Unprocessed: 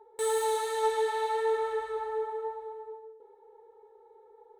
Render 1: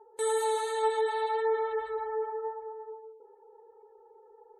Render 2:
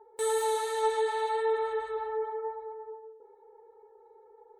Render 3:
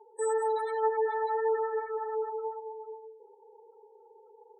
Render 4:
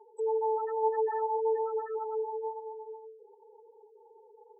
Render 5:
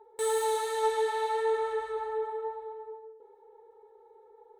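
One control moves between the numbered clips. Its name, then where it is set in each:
gate on every frequency bin, under each frame's peak: −35, −45, −20, −10, −60 decibels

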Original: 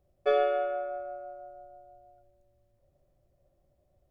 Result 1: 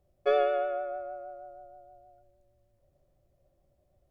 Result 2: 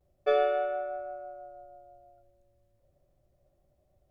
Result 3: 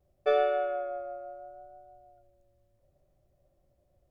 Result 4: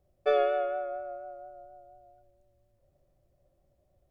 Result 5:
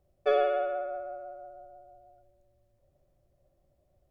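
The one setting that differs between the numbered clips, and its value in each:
pitch vibrato, speed: 6.4, 0.33, 0.7, 4.2, 16 Hertz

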